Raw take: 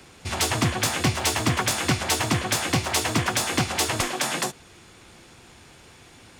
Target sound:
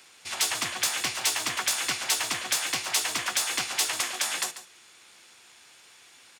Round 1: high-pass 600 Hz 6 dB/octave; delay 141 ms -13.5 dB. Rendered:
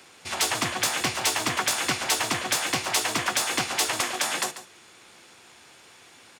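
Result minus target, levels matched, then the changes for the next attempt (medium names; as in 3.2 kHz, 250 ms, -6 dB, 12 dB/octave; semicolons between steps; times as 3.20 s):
500 Hz band +7.0 dB
change: high-pass 2.1 kHz 6 dB/octave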